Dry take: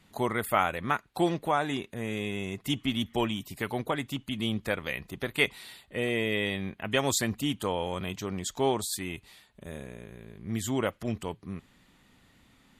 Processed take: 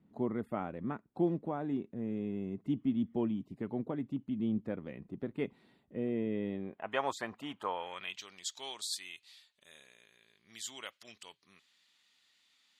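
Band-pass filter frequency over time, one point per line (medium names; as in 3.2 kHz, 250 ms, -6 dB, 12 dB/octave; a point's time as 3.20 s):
band-pass filter, Q 1.4
6.49 s 240 Hz
6.91 s 960 Hz
7.62 s 960 Hz
8.32 s 4.5 kHz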